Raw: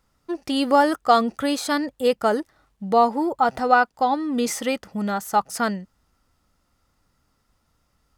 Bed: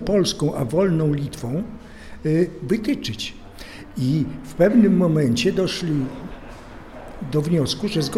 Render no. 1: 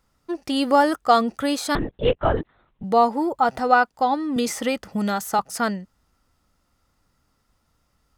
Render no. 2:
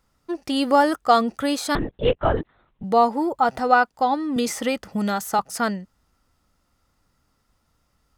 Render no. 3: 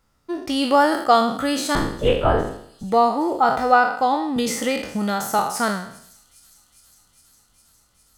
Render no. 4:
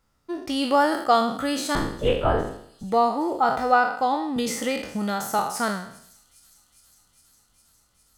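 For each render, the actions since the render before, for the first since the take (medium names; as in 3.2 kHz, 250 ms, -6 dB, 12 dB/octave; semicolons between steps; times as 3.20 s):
1.75–2.84 s: LPC vocoder at 8 kHz whisper; 4.36–5.39 s: three bands compressed up and down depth 70%
no audible change
spectral sustain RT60 0.63 s; feedback echo behind a high-pass 408 ms, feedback 80%, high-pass 5.4 kHz, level -19 dB
trim -3.5 dB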